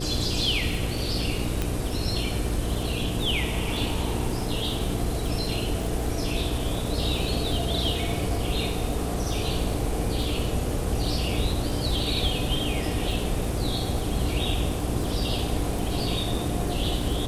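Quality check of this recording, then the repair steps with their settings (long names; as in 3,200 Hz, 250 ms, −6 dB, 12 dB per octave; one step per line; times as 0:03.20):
surface crackle 24 per second −31 dBFS
mains hum 60 Hz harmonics 8 −31 dBFS
0:01.62: click −12 dBFS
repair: click removal
hum removal 60 Hz, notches 8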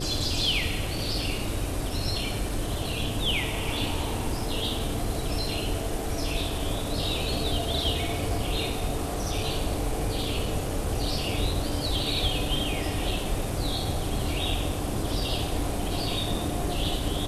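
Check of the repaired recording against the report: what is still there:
none of them is left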